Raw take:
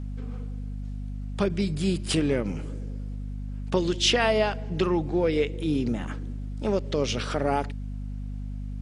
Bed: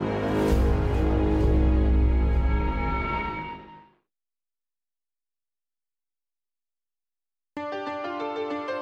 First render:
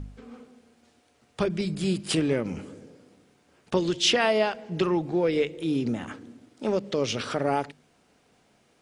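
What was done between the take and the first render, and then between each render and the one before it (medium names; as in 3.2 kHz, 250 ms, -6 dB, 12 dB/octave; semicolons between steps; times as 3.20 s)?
de-hum 50 Hz, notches 5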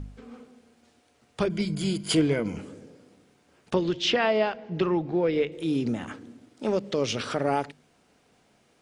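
1.51–2.57 s: rippled EQ curve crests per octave 1.8, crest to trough 9 dB; 3.75–5.52 s: distance through air 150 m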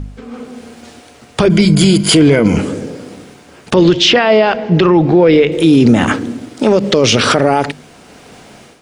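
level rider gain up to 13 dB; loudness maximiser +12.5 dB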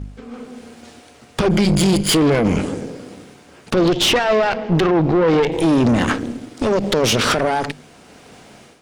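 valve stage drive 11 dB, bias 0.8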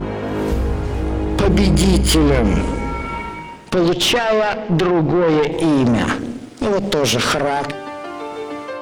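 add bed +2.5 dB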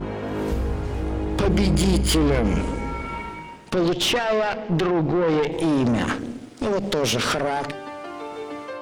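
trim -5.5 dB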